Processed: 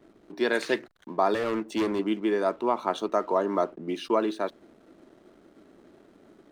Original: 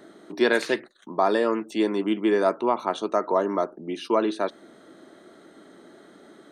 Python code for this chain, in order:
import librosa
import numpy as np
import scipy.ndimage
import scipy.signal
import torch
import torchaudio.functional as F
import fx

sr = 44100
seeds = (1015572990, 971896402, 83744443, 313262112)

y = fx.clip_hard(x, sr, threshold_db=-22.5, at=(1.34, 1.99))
y = fx.rider(y, sr, range_db=4, speed_s=0.5)
y = fx.backlash(y, sr, play_db=-47.5)
y = F.gain(torch.from_numpy(y), -2.0).numpy()